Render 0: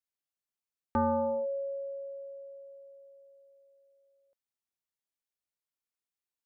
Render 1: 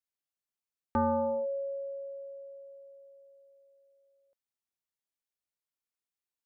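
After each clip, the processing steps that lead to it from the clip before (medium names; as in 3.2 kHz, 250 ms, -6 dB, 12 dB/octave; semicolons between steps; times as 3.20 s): no audible change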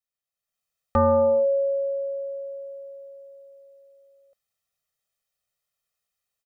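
comb 1.6 ms, depth 93%; level rider gain up to 10 dB; trim -3 dB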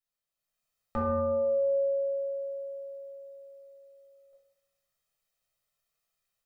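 peak limiter -21 dBFS, peak gain reduction 11 dB; reverberation RT60 0.90 s, pre-delay 3 ms, DRR -2.5 dB; trim -3 dB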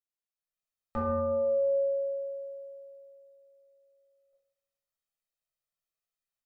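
upward expansion 1.5:1, over -48 dBFS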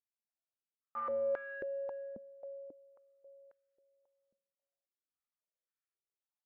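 saturation -28 dBFS, distortion -14 dB; step-sequenced band-pass 3.7 Hz 220–1600 Hz; trim +1.5 dB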